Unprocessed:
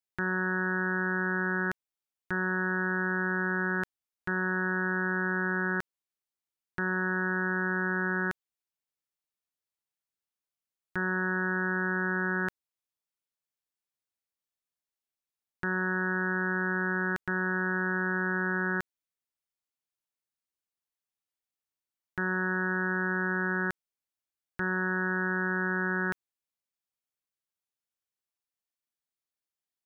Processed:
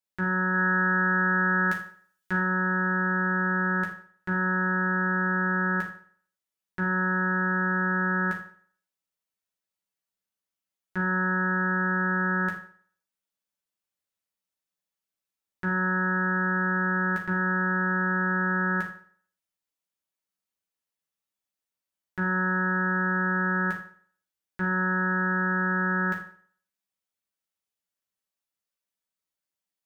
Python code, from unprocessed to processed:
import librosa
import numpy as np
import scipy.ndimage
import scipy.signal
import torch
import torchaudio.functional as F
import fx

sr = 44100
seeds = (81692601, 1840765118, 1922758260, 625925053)

y = fx.high_shelf(x, sr, hz=2200.0, db=9.0, at=(0.54, 2.39))
y = fx.rev_fdn(y, sr, rt60_s=0.52, lf_ratio=0.85, hf_ratio=0.85, size_ms=31.0, drr_db=-3.0)
y = y * librosa.db_to_amplitude(-2.5)